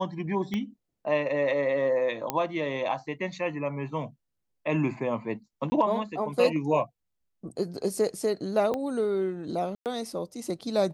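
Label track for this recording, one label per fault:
0.540000	0.540000	pop -19 dBFS
2.300000	2.300000	pop -11 dBFS
5.700000	5.720000	dropout 20 ms
8.740000	8.740000	pop -18 dBFS
9.750000	9.860000	dropout 108 ms

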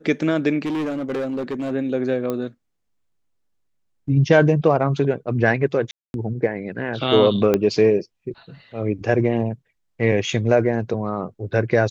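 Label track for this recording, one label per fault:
0.650000	1.720000	clipped -21.5 dBFS
2.300000	2.300000	pop -13 dBFS
5.910000	6.140000	dropout 231 ms
7.540000	7.540000	pop -6 dBFS

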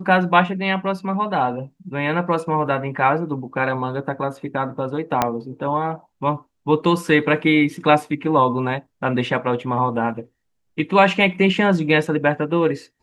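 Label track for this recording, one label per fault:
5.220000	5.220000	pop -3 dBFS

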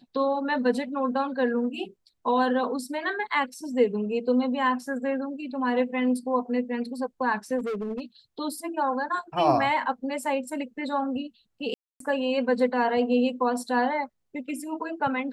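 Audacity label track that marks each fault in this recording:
7.580000	8.010000	clipped -27 dBFS
11.740000	12.000000	dropout 263 ms

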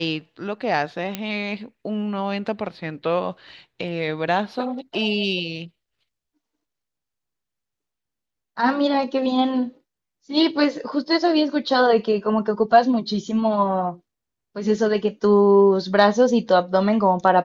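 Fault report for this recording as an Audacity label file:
1.150000	1.150000	pop -10 dBFS

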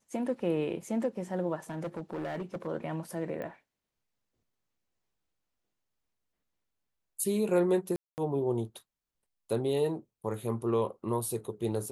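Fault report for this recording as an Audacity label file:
1.700000	2.680000	clipped -31.5 dBFS
3.420000	3.420000	pop -28 dBFS
7.960000	8.180000	dropout 219 ms

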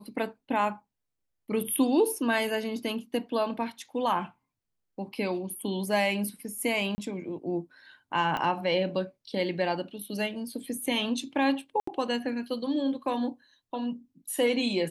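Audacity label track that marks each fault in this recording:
6.950000	6.980000	dropout 30 ms
8.370000	8.370000	pop -18 dBFS
11.800000	11.870000	dropout 74 ms

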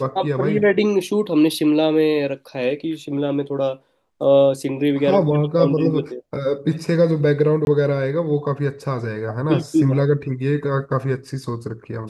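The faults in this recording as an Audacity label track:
7.650000	7.670000	dropout 21 ms

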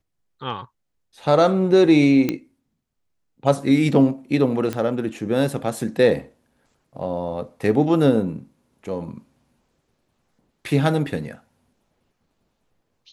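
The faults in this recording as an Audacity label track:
2.290000	2.290000	pop -9 dBFS
4.730000	4.730000	pop -12 dBFS

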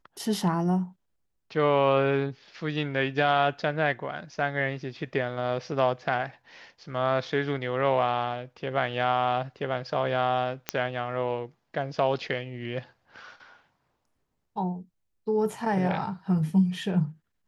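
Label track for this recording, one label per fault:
10.690000	10.690000	pop -9 dBFS

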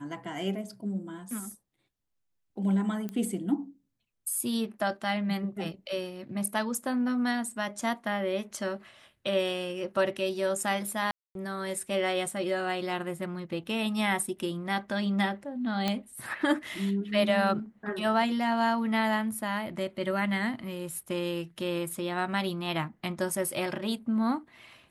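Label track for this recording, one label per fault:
3.090000	3.090000	pop -23 dBFS
11.110000	11.350000	dropout 242 ms
15.880000	15.880000	pop -14 dBFS

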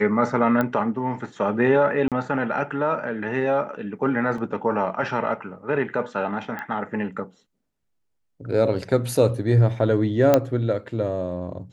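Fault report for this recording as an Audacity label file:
0.610000	0.610000	pop -11 dBFS
2.080000	2.120000	dropout 37 ms
4.380000	4.380000	dropout 3.4 ms
6.590000	6.590000	pop -19 dBFS
10.340000	10.340000	pop -4 dBFS

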